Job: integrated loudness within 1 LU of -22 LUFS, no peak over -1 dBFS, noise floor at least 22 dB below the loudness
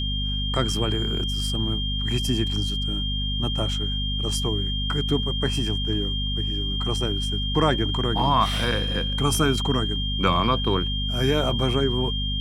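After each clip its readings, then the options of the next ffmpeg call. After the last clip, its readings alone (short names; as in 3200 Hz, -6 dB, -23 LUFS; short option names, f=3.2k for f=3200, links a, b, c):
hum 50 Hz; harmonics up to 250 Hz; hum level -25 dBFS; steady tone 3200 Hz; tone level -28 dBFS; loudness -24.0 LUFS; peak -4.0 dBFS; loudness target -22.0 LUFS
-> -af "bandreject=f=50:t=h:w=4,bandreject=f=100:t=h:w=4,bandreject=f=150:t=h:w=4,bandreject=f=200:t=h:w=4,bandreject=f=250:t=h:w=4"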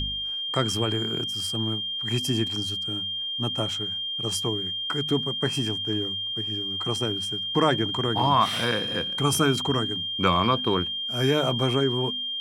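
hum none; steady tone 3200 Hz; tone level -28 dBFS
-> -af "bandreject=f=3.2k:w=30"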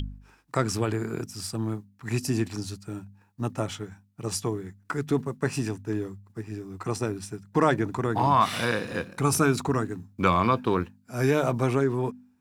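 steady tone none; loudness -27.5 LUFS; peak -5.5 dBFS; loudness target -22.0 LUFS
-> -af "volume=5.5dB,alimiter=limit=-1dB:level=0:latency=1"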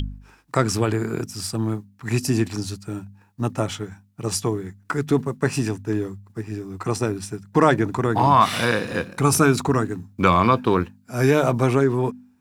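loudness -22.0 LUFS; peak -1.0 dBFS; noise floor -57 dBFS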